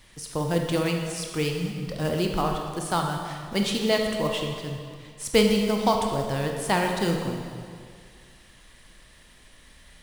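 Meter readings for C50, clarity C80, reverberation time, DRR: 3.5 dB, 5.0 dB, 2.1 s, 2.0 dB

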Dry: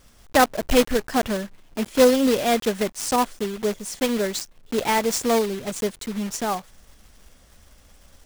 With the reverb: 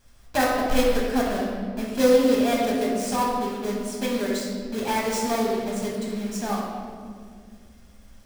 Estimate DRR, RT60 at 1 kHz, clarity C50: -4.5 dB, 1.7 s, 0.5 dB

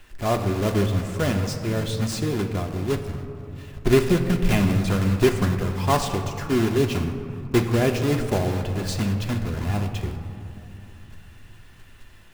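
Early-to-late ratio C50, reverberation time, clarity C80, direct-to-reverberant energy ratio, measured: 7.5 dB, 2.9 s, 8.5 dB, 3.5 dB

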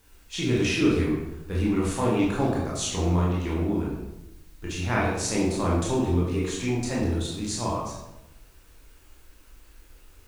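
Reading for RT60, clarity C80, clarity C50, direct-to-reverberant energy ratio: 0.90 s, 4.5 dB, 1.5 dB, -5.5 dB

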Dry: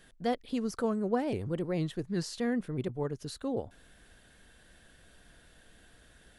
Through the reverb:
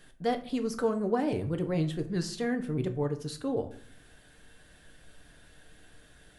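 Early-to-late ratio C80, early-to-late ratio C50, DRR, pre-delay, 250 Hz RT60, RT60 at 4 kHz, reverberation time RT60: 17.0 dB, 14.0 dB, 6.0 dB, 7 ms, 0.80 s, 0.35 s, 0.55 s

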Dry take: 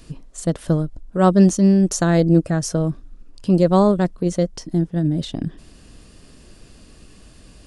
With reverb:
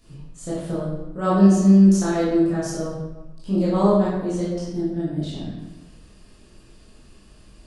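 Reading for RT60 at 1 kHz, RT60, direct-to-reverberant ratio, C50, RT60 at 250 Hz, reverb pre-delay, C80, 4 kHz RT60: 1.1 s, 1.1 s, -9.5 dB, -0.5 dB, 1.0 s, 15 ms, 2.5 dB, 0.75 s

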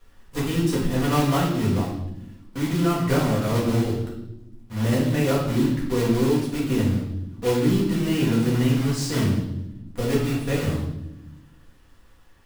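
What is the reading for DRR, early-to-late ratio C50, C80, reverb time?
-6.5 dB, 3.5 dB, 7.0 dB, 0.90 s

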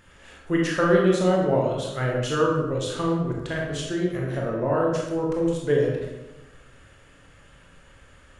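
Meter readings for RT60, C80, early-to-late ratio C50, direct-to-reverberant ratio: 1.1 s, 4.5 dB, 1.5 dB, -2.5 dB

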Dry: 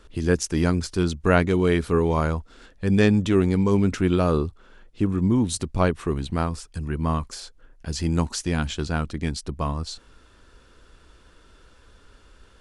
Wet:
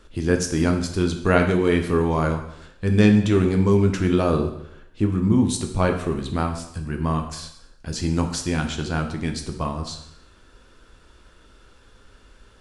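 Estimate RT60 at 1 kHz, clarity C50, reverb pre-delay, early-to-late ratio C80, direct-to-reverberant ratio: 0.75 s, 8.5 dB, 5 ms, 11.0 dB, 4.0 dB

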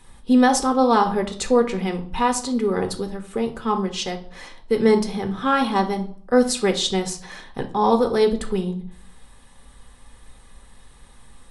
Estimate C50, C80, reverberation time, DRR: 12.5 dB, 17.5 dB, 0.55 s, 4.5 dB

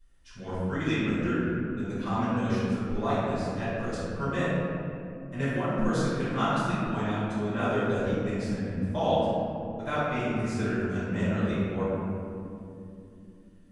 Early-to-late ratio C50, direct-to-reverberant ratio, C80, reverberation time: -4.0 dB, -12.5 dB, -1.5 dB, 2.8 s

